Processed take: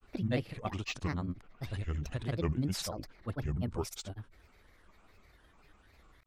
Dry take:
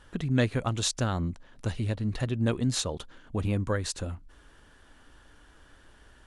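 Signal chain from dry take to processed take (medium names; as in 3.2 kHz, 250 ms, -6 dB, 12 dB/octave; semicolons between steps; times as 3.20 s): coarse spectral quantiser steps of 15 dB; peaking EQ 6.7 kHz -6.5 dB 0.69 oct; granulator, spray 100 ms, pitch spread up and down by 7 st; trim -4.5 dB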